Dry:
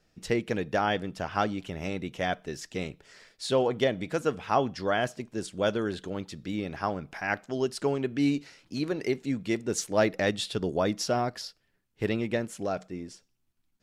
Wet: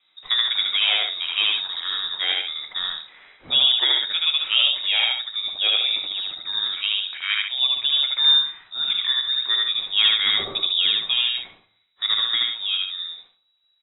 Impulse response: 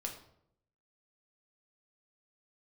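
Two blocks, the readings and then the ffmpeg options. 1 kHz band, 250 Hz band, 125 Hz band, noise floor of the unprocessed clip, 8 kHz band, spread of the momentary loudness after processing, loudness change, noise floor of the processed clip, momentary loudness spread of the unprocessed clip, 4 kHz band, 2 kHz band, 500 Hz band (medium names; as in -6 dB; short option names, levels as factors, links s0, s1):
-5.5 dB, under -20 dB, under -15 dB, -72 dBFS, under -40 dB, 10 LU, +10.5 dB, -66 dBFS, 10 LU, +24.0 dB, +7.5 dB, -16.5 dB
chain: -filter_complex "[0:a]lowpass=f=3300:t=q:w=0.5098,lowpass=f=3300:t=q:w=0.6013,lowpass=f=3300:t=q:w=0.9,lowpass=f=3300:t=q:w=2.563,afreqshift=-3900,aecho=1:1:75.8|139.9:0.891|0.447,asplit=2[s0][s1];[1:a]atrim=start_sample=2205,asetrate=61740,aresample=44100[s2];[s1][s2]afir=irnorm=-1:irlink=0,volume=1.06[s3];[s0][s3]amix=inputs=2:normalize=0"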